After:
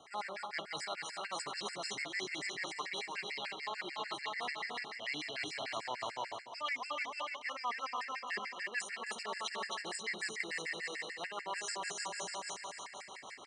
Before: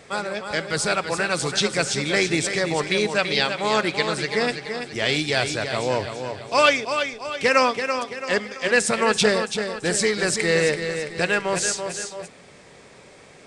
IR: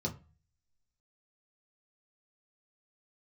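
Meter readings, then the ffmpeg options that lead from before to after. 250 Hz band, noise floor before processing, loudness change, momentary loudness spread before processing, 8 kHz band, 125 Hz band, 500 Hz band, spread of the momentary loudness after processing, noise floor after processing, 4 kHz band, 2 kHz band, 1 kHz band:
−24.5 dB, −48 dBFS, −17.5 dB, 9 LU, −17.5 dB, −29.0 dB, −24.0 dB, 4 LU, −51 dBFS, −15.5 dB, −15.5 dB, −14.0 dB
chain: -filter_complex "[0:a]aecho=1:1:263|526|789|1052|1315|1578:0.562|0.276|0.135|0.0662|0.0324|0.0159,acrossover=split=520[link_01][link_02];[link_01]aeval=exprs='val(0)*(1-0.5/2+0.5/2*cos(2*PI*6.2*n/s))':channel_layout=same[link_03];[link_02]aeval=exprs='val(0)*(1-0.5/2-0.5/2*cos(2*PI*6.2*n/s))':channel_layout=same[link_04];[link_03][link_04]amix=inputs=2:normalize=0,acontrast=48,acrossover=split=360 6700:gain=0.0891 1 0.251[link_05][link_06][link_07];[link_05][link_06][link_07]amix=inputs=3:normalize=0,aecho=1:1:1:0.7,areverse,acompressor=threshold=-32dB:ratio=6,areverse,afftfilt=real='re*gt(sin(2*PI*6.8*pts/sr)*(1-2*mod(floor(b*sr/1024/1400),2)),0)':imag='im*gt(sin(2*PI*6.8*pts/sr)*(1-2*mod(floor(b*sr/1024/1400),2)),0)':win_size=1024:overlap=0.75,volume=-3.5dB"

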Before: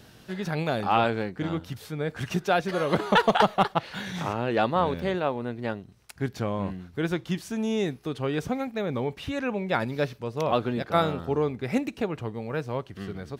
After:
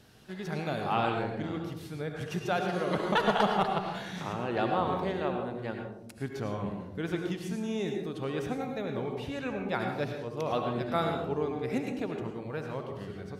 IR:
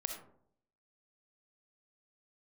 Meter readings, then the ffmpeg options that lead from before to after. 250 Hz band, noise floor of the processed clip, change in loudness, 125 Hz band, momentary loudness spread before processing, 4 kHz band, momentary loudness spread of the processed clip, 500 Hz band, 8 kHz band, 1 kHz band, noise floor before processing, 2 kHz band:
−4.5 dB, −44 dBFS, −4.5 dB, −5.0 dB, 11 LU, −5.5 dB, 9 LU, −4.5 dB, −5.5 dB, −4.5 dB, −52 dBFS, −5.0 dB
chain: -filter_complex "[1:a]atrim=start_sample=2205,asetrate=25578,aresample=44100[link_01];[0:a][link_01]afir=irnorm=-1:irlink=0,volume=-8.5dB"

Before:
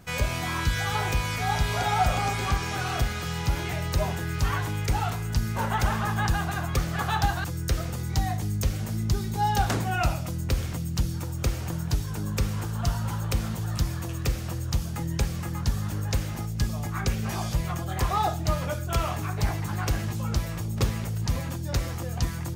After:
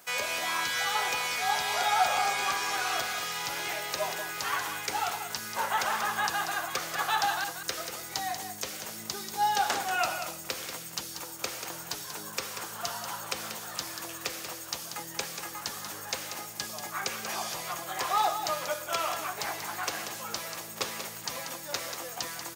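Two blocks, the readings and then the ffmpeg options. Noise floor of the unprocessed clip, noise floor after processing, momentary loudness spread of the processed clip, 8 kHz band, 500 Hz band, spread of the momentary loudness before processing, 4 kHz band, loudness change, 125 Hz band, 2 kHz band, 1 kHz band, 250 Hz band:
−32 dBFS, −42 dBFS, 9 LU, +2.5 dB, −3.0 dB, 4 LU, +2.5 dB, −3.0 dB, −26.5 dB, +1.0 dB, 0.0 dB, −14.5 dB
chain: -filter_complex "[0:a]highshelf=frequency=6800:gain=11,asplit=2[link_01][link_02];[link_02]aecho=0:1:187:0.355[link_03];[link_01][link_03]amix=inputs=2:normalize=0,acrossover=split=6400[link_04][link_05];[link_05]acompressor=threshold=-40dB:ratio=4:attack=1:release=60[link_06];[link_04][link_06]amix=inputs=2:normalize=0,highpass=560"

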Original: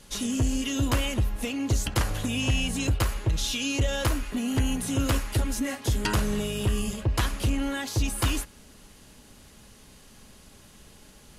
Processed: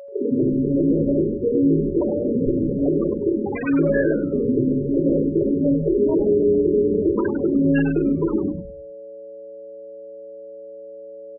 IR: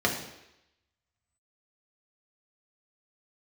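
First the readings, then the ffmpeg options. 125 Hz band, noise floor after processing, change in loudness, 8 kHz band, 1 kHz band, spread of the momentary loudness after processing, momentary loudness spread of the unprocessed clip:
0.0 dB, −38 dBFS, +7.5 dB, below −40 dB, −4.5 dB, 20 LU, 3 LU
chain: -filter_complex "[0:a]asplit=2[link_01][link_02];[link_02]acompressor=threshold=-32dB:ratio=12,volume=-2dB[link_03];[link_01][link_03]amix=inputs=2:normalize=0,highpass=frequency=380:width_type=q:width=3.8[link_04];[1:a]atrim=start_sample=2205,asetrate=36162,aresample=44100[link_05];[link_04][link_05]afir=irnorm=-1:irlink=0,acrossover=split=680[link_06][link_07];[link_07]acrusher=samples=20:mix=1:aa=0.000001:lfo=1:lforange=20:lforate=0.22[link_08];[link_06][link_08]amix=inputs=2:normalize=0,aresample=16000,aresample=44100,alimiter=limit=-3.5dB:level=0:latency=1:release=42,adynamicsmooth=sensitivity=2:basefreq=730,highshelf=frequency=3100:gain=8,afftfilt=real='re*gte(hypot(re,im),0.708)':imag='im*gte(hypot(re,im),0.708)':win_size=1024:overlap=0.75,aeval=exprs='val(0)+0.0398*sin(2*PI*560*n/s)':channel_layout=same,asplit=5[link_09][link_10][link_11][link_12][link_13];[link_10]adelay=100,afreqshift=-120,volume=-7.5dB[link_14];[link_11]adelay=200,afreqshift=-240,volume=-17.7dB[link_15];[link_12]adelay=300,afreqshift=-360,volume=-27.8dB[link_16];[link_13]adelay=400,afreqshift=-480,volume=-38dB[link_17];[link_09][link_14][link_15][link_16][link_17]amix=inputs=5:normalize=0,volume=-7.5dB"

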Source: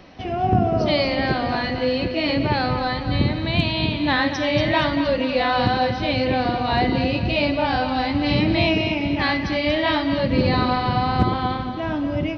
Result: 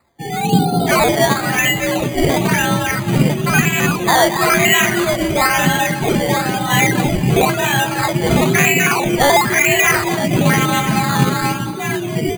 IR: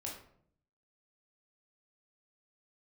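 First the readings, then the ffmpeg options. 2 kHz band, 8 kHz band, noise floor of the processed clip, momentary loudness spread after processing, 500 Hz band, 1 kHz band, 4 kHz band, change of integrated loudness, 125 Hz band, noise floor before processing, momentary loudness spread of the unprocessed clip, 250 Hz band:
+9.5 dB, can't be measured, −23 dBFS, 6 LU, +4.5 dB, +5.5 dB, +4.5 dB, +6.5 dB, +6.0 dB, −27 dBFS, 3 LU, +4.0 dB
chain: -filter_complex "[0:a]afftdn=noise_reduction=26:noise_floor=-27,equalizer=frequency=125:width_type=o:width=1:gain=-3,equalizer=frequency=250:width_type=o:width=1:gain=-7,equalizer=frequency=500:width_type=o:width=1:gain=-7,equalizer=frequency=1000:width_type=o:width=1:gain=-9,equalizer=frequency=2000:width_type=o:width=1:gain=10,equalizer=frequency=4000:width_type=o:width=1:gain=-8,areverse,acompressor=mode=upward:threshold=-36dB:ratio=2.5,areverse,flanger=delay=6.4:depth=10:regen=60:speed=0.21:shape=sinusoidal,afreqshift=63,acrusher=samples=13:mix=1:aa=0.000001:lfo=1:lforange=7.8:lforate=1,asuperstop=centerf=5400:order=20:qfactor=6.9,asplit=2[link_01][link_02];[link_02]asplit=6[link_03][link_04][link_05][link_06][link_07][link_08];[link_03]adelay=229,afreqshift=35,volume=-20dB[link_09];[link_04]adelay=458,afreqshift=70,volume=-23.9dB[link_10];[link_05]adelay=687,afreqshift=105,volume=-27.8dB[link_11];[link_06]adelay=916,afreqshift=140,volume=-31.6dB[link_12];[link_07]adelay=1145,afreqshift=175,volume=-35.5dB[link_13];[link_08]adelay=1374,afreqshift=210,volume=-39.4dB[link_14];[link_09][link_10][link_11][link_12][link_13][link_14]amix=inputs=6:normalize=0[link_15];[link_01][link_15]amix=inputs=2:normalize=0,alimiter=level_in=15.5dB:limit=-1dB:release=50:level=0:latency=1,volume=-1dB"

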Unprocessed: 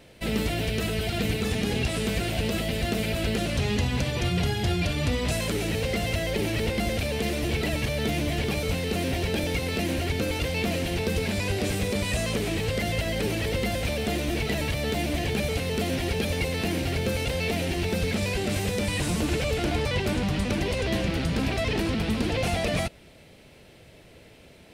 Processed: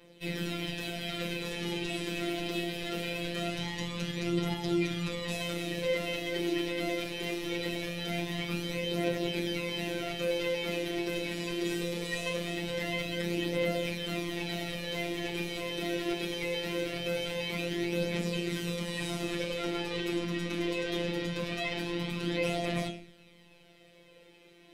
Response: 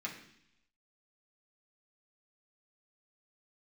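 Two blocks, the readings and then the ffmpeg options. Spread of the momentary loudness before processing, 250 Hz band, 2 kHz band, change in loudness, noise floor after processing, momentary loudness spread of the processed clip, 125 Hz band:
1 LU, −5.5 dB, −5.0 dB, −6.0 dB, −58 dBFS, 4 LU, −11.0 dB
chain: -filter_complex "[1:a]atrim=start_sample=2205,asetrate=66150,aresample=44100[link_01];[0:a][link_01]afir=irnorm=-1:irlink=0,afftfilt=real='hypot(re,im)*cos(PI*b)':imag='0':win_size=1024:overlap=0.75,aphaser=in_gain=1:out_gain=1:delay=3.2:decay=0.38:speed=0.22:type=triangular"

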